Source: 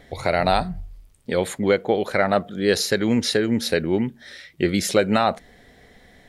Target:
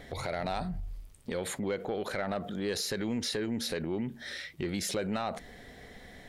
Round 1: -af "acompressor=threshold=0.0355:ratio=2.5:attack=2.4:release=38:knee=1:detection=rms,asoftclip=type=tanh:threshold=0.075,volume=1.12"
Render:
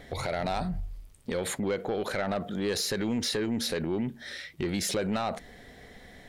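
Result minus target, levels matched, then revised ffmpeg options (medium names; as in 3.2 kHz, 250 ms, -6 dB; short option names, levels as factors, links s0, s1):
compression: peak gain reduction -4 dB
-af "acompressor=threshold=0.0158:ratio=2.5:attack=2.4:release=38:knee=1:detection=rms,asoftclip=type=tanh:threshold=0.075,volume=1.12"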